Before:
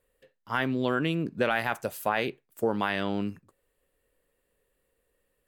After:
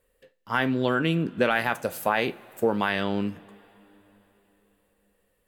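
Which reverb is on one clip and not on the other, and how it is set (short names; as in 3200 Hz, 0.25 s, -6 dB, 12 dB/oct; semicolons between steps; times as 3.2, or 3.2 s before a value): two-slope reverb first 0.24 s, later 4 s, from -22 dB, DRR 11.5 dB; gain +3 dB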